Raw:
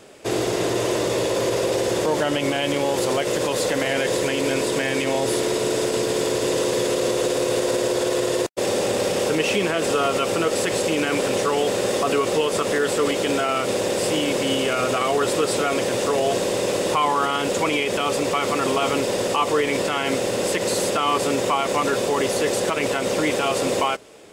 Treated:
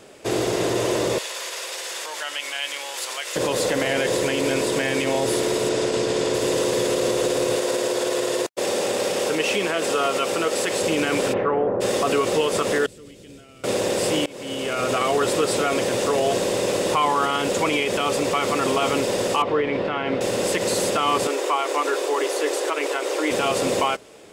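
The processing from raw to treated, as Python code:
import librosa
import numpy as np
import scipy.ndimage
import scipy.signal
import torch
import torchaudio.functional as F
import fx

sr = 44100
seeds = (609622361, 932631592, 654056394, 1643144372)

y = fx.highpass(x, sr, hz=1400.0, slope=12, at=(1.18, 3.36))
y = fx.lowpass(y, sr, hz=7700.0, slope=12, at=(5.69, 6.34))
y = fx.highpass(y, sr, hz=310.0, slope=6, at=(7.56, 10.81))
y = fx.lowpass(y, sr, hz=fx.line((11.32, 2500.0), (11.8, 1100.0)), slope=24, at=(11.32, 11.8), fade=0.02)
y = fx.tone_stack(y, sr, knobs='10-0-1', at=(12.86, 13.64))
y = fx.air_absorb(y, sr, metres=350.0, at=(19.42, 20.21))
y = fx.cheby_ripple_highpass(y, sr, hz=290.0, ripple_db=3, at=(21.27, 23.31))
y = fx.edit(y, sr, fx.fade_in_from(start_s=14.26, length_s=0.7, floor_db=-24.0), tone=tone)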